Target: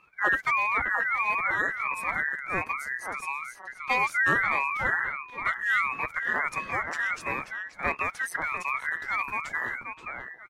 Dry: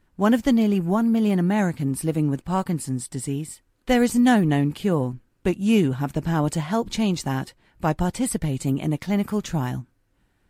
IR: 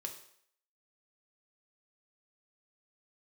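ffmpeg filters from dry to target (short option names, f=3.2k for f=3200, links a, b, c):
-filter_complex "[0:a]afftfilt=real='real(if(between(b,1,1012),(2*floor((b-1)/92)+1)*92-b,b),0)':imag='imag(if(between(b,1,1012),(2*floor((b-1)/92)+1)*92-b,b),0)*if(between(b,1,1012),-1,1)':win_size=2048:overlap=0.75,asplit=2[a][b];[b]adelay=530,lowpass=f=1.6k:p=1,volume=-4dB,asplit=2[c][d];[d]adelay=530,lowpass=f=1.6k:p=1,volume=0.21,asplit=2[e][f];[f]adelay=530,lowpass=f=1.6k:p=1,volume=0.21[g];[a][c][e][g]amix=inputs=4:normalize=0,acrossover=split=630|4100[h][i][j];[h]acontrast=62[k];[k][i][j]amix=inputs=3:normalize=0,highpass=260,highshelf=f=6.3k:g=-9,agate=range=-33dB:threshold=-46dB:ratio=3:detection=peak,adynamicequalizer=threshold=0.00891:dfrequency=3400:dqfactor=1.7:tfrequency=3400:tqfactor=1.7:attack=5:release=100:ratio=0.375:range=3:mode=cutabove:tftype=bell,acompressor=mode=upward:threshold=-28dB:ratio=2.5,aeval=exprs='val(0)*sin(2*PI*410*n/s+410*0.8/1.5*sin(2*PI*1.5*n/s))':c=same,volume=-3.5dB"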